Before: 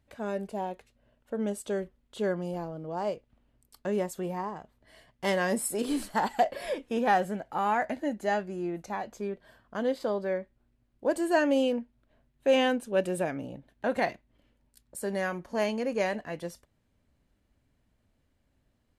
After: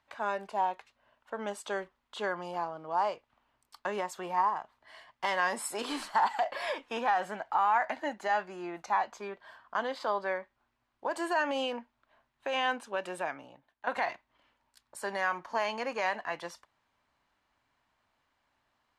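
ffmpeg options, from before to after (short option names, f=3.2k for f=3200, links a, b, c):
-filter_complex "[0:a]asplit=2[a][b];[a]atrim=end=13.87,asetpts=PTS-STARTPTS,afade=t=out:st=12.66:d=1.21:silence=0.199526[c];[b]atrim=start=13.87,asetpts=PTS-STARTPTS,afade=t=in:d=0.004:c=hsin:silence=0.199526[d];[c][d]concat=n=2:v=0:a=1,acrossover=split=400 6500:gain=0.0891 1 0.2[e][f][g];[e][f][g]amix=inputs=3:normalize=0,alimiter=level_in=1.5dB:limit=-24dB:level=0:latency=1:release=85,volume=-1.5dB,equalizer=f=125:t=o:w=1:g=4,equalizer=f=500:t=o:w=1:g=-9,equalizer=f=1k:t=o:w=1:g=9,volume=4dB"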